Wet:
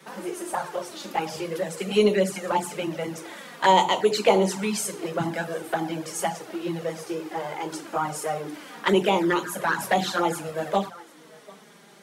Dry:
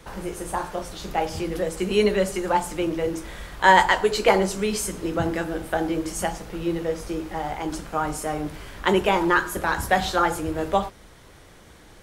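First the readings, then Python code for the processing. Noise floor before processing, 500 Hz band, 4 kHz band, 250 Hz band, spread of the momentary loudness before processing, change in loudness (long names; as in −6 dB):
−49 dBFS, −1.0 dB, 0.0 dB, −1.5 dB, 11 LU, −2.0 dB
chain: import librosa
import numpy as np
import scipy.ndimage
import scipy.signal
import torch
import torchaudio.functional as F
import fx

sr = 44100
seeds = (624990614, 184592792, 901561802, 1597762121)

p1 = scipy.signal.sosfilt(scipy.signal.butter(6, 150.0, 'highpass', fs=sr, output='sos'), x)
p2 = fx.hum_notches(p1, sr, base_hz=60, count=6)
p3 = p2 + 10.0 ** (-23.5 / 20.0) * np.pad(p2, (int(745 * sr / 1000.0), 0))[:len(p2)]
p4 = fx.env_flanger(p3, sr, rest_ms=5.4, full_db=-16.0)
p5 = 10.0 ** (-21.0 / 20.0) * np.tanh(p4 / 10.0 ** (-21.0 / 20.0))
y = p4 + (p5 * librosa.db_to_amplitude(-9.0))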